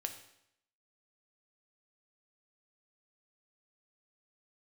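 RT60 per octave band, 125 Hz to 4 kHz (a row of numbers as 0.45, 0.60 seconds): 0.75, 0.75, 0.75, 0.75, 0.75, 0.75 seconds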